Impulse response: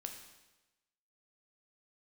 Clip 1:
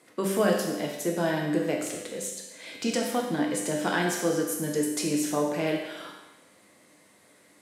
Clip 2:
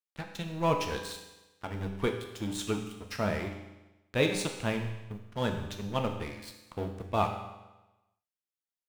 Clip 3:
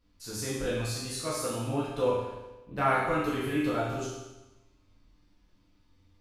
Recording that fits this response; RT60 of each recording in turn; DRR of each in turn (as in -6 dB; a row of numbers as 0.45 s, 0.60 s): 2; 1.1 s, 1.1 s, 1.1 s; -1.0 dB, 3.5 dB, -8.0 dB